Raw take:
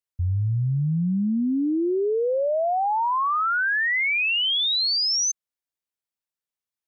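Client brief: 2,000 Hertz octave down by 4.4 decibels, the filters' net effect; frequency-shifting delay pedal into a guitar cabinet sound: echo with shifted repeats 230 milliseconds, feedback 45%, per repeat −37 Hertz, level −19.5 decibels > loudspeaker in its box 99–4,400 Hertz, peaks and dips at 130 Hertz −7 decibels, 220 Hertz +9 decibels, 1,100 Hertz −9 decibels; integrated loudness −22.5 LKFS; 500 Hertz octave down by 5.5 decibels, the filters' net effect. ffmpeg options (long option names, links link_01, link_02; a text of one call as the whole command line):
ffmpeg -i in.wav -filter_complex "[0:a]equalizer=frequency=500:width_type=o:gain=-7,equalizer=frequency=2000:width_type=o:gain=-4.5,asplit=4[link_01][link_02][link_03][link_04];[link_02]adelay=230,afreqshift=-37,volume=-19.5dB[link_05];[link_03]adelay=460,afreqshift=-74,volume=-26.4dB[link_06];[link_04]adelay=690,afreqshift=-111,volume=-33.4dB[link_07];[link_01][link_05][link_06][link_07]amix=inputs=4:normalize=0,highpass=99,equalizer=frequency=130:width_type=q:width=4:gain=-7,equalizer=frequency=220:width_type=q:width=4:gain=9,equalizer=frequency=1100:width_type=q:width=4:gain=-9,lowpass=frequency=4400:width=0.5412,lowpass=frequency=4400:width=1.3066,volume=2dB" out.wav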